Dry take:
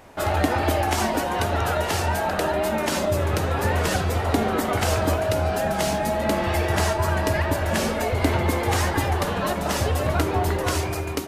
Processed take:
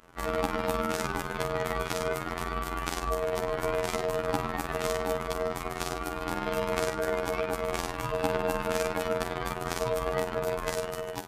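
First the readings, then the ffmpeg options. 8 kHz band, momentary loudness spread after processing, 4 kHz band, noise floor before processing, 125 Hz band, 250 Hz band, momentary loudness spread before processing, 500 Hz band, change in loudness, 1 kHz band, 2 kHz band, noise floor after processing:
-9.0 dB, 4 LU, -8.5 dB, -27 dBFS, -15.0 dB, -10.0 dB, 2 LU, -5.5 dB, -8.0 dB, -7.5 dB, -8.0 dB, -38 dBFS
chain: -af "afftfilt=real='hypot(re,im)*cos(PI*b)':imag='0':win_size=2048:overlap=0.75,aeval=exprs='val(0)*sin(2*PI*550*n/s)':c=same,volume=-2.5dB"

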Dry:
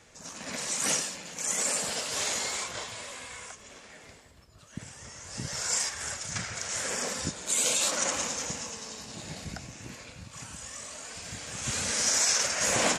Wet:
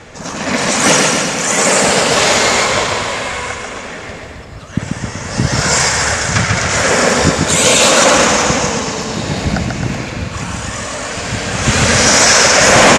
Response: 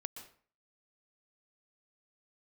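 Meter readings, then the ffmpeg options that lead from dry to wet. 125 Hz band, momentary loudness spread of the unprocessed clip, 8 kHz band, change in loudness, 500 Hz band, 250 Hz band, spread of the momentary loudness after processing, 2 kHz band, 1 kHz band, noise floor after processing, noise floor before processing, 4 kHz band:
+25.0 dB, 19 LU, +14.0 dB, +17.0 dB, +23.5 dB, +24.0 dB, 15 LU, +22.0 dB, +23.5 dB, -30 dBFS, -53 dBFS, +18.0 dB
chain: -af "aemphasis=mode=reproduction:type=75kf,aecho=1:1:140|266|379.4|481.5|573.3:0.631|0.398|0.251|0.158|0.1,apsyclip=24.5dB,volume=-1.5dB"

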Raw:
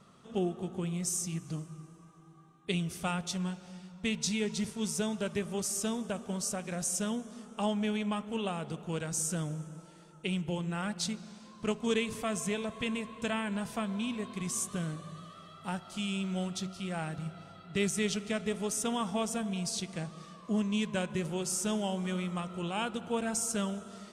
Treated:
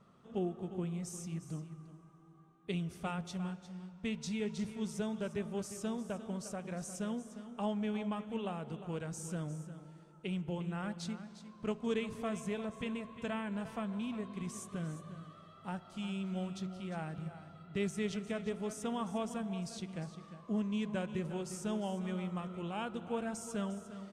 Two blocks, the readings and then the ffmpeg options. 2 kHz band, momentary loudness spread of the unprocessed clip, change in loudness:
-7.5 dB, 10 LU, -5.5 dB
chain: -filter_complex "[0:a]highshelf=f=3k:g=-11.5,asplit=2[a][b];[b]aecho=0:1:353:0.224[c];[a][c]amix=inputs=2:normalize=0,volume=-4dB"

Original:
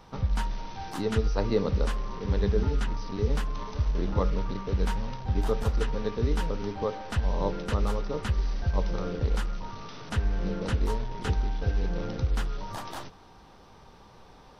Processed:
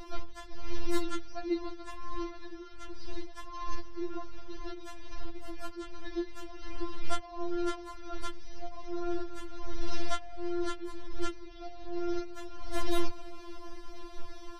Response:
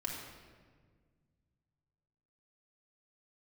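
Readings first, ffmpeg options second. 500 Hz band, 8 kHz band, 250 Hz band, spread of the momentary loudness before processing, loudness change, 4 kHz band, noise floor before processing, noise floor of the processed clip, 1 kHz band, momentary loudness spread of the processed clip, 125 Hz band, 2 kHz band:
-7.5 dB, n/a, -3.5 dB, 8 LU, -9.5 dB, -3.5 dB, -53 dBFS, -46 dBFS, -5.0 dB, 13 LU, -19.5 dB, -6.0 dB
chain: -af "lowshelf=f=270:g=10.5,acompressor=threshold=-29dB:ratio=8,afftfilt=real='re*4*eq(mod(b,16),0)':imag='im*4*eq(mod(b,16),0)':win_size=2048:overlap=0.75,volume=7.5dB"

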